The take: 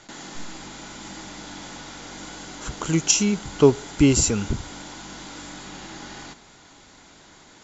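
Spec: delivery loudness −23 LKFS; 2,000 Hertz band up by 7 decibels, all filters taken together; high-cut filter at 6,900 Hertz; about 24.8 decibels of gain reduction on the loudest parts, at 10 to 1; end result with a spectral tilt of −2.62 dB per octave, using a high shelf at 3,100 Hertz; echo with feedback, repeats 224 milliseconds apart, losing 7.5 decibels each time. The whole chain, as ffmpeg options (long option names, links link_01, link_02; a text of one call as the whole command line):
ffmpeg -i in.wav -af "lowpass=6900,equalizer=frequency=2000:width_type=o:gain=8,highshelf=frequency=3100:gain=3,acompressor=threshold=-35dB:ratio=10,aecho=1:1:224|448|672|896|1120:0.422|0.177|0.0744|0.0312|0.0131,volume=14.5dB" out.wav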